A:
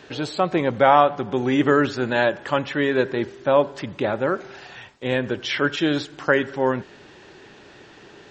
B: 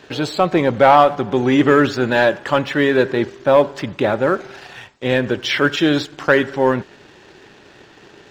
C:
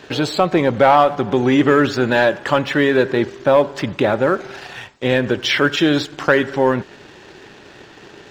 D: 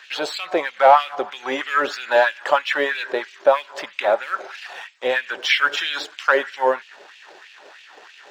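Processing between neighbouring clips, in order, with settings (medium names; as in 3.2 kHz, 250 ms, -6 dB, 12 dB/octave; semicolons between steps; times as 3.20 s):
waveshaping leveller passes 1; trim +2 dB
compression 1.5:1, threshold -20 dBFS, peak gain reduction 5 dB; trim +3.5 dB
LFO high-pass sine 3.1 Hz 550–2700 Hz; trim -4 dB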